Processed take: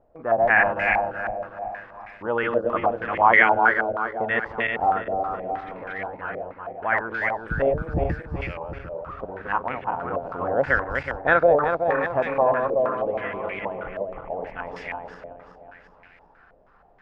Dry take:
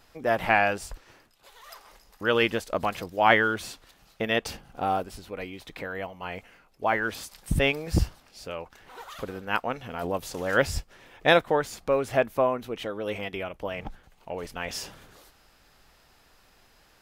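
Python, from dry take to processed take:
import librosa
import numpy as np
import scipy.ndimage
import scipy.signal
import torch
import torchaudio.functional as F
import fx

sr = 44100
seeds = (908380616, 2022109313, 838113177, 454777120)

y = fx.reverse_delay_fb(x, sr, ms=187, feedback_pct=68, wet_db=-1.5)
y = fx.filter_held_lowpass(y, sr, hz=6.3, low_hz=610.0, high_hz=2100.0)
y = F.gain(torch.from_numpy(y), -4.0).numpy()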